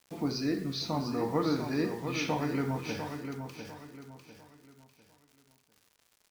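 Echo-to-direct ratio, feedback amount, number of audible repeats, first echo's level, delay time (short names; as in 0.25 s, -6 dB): -7.0 dB, 34%, 3, -7.5 dB, 0.699 s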